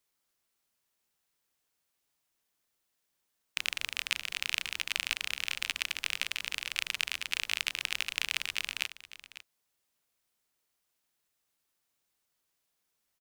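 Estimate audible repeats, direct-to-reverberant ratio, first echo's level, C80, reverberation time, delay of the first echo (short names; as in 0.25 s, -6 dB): 1, none, -15.5 dB, none, none, 0.55 s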